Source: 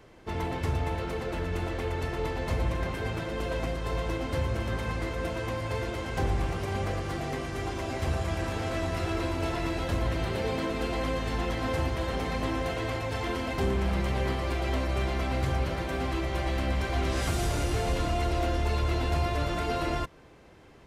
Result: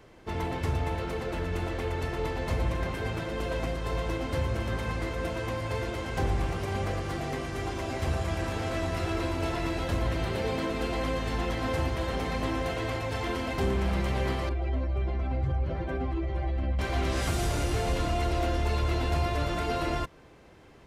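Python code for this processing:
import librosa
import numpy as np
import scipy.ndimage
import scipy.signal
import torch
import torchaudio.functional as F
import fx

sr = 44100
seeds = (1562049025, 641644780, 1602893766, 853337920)

y = fx.spec_expand(x, sr, power=1.6, at=(14.49, 16.79))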